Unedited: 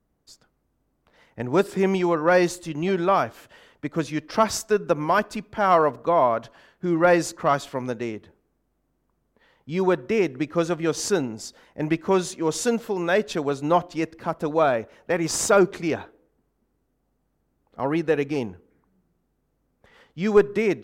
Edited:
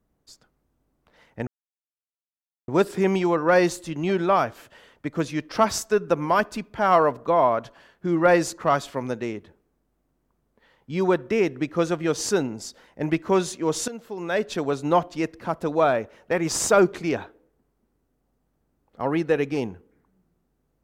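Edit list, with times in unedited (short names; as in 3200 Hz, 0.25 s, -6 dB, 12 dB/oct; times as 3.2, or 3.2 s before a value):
1.47 insert silence 1.21 s
12.67–13.43 fade in, from -17 dB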